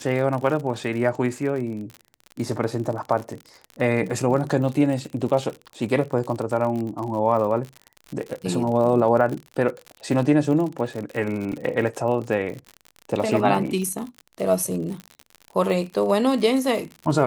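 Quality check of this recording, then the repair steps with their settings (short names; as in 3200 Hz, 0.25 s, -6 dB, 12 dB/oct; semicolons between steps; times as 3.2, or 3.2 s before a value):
crackle 54/s -29 dBFS
11.52 gap 2.8 ms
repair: de-click; interpolate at 11.52, 2.8 ms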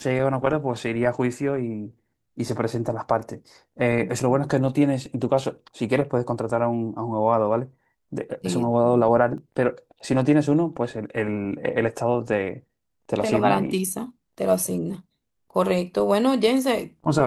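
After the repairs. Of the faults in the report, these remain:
none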